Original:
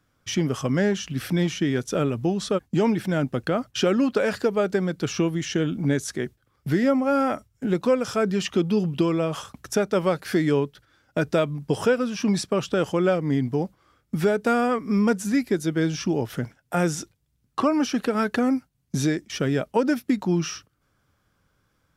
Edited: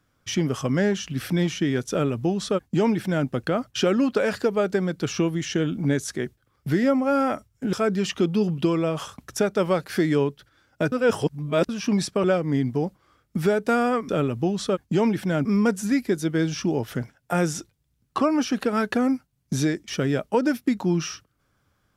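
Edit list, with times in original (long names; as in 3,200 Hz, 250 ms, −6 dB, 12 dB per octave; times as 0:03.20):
0:01.91–0:03.27: duplicate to 0:14.87
0:07.73–0:08.09: remove
0:11.28–0:12.05: reverse
0:12.60–0:13.02: remove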